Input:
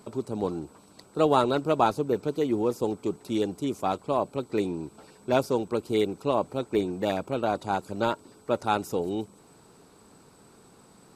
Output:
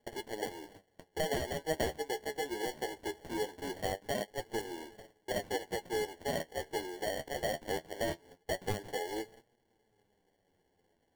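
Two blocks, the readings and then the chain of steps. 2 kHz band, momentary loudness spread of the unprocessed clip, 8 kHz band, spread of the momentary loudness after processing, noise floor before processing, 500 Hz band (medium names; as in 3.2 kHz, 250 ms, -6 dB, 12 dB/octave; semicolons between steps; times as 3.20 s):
-1.5 dB, 10 LU, +2.0 dB, 7 LU, -56 dBFS, -9.5 dB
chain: gate -49 dBFS, range -17 dB; high-pass 420 Hz 24 dB/octave; compression 2.5:1, threshold -37 dBFS, peak gain reduction 13 dB; sample-and-hold 35×; flange 0.21 Hz, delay 8.4 ms, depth 5.8 ms, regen +38%; trim +4.5 dB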